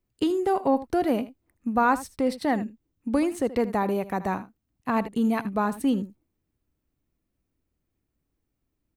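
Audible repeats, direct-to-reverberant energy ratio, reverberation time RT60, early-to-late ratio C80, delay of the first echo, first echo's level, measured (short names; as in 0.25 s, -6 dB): 1, none, none, none, 78 ms, -15.5 dB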